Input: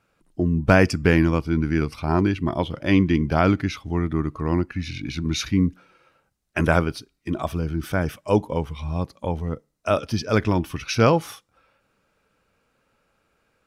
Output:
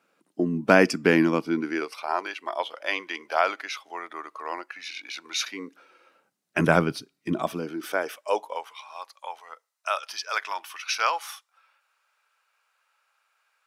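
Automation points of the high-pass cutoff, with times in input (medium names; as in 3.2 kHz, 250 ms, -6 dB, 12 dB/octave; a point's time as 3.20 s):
high-pass 24 dB/octave
1.45 s 210 Hz
2.05 s 590 Hz
5.37 s 590 Hz
6.58 s 140 Hz
7.33 s 140 Hz
7.80 s 320 Hz
8.84 s 850 Hz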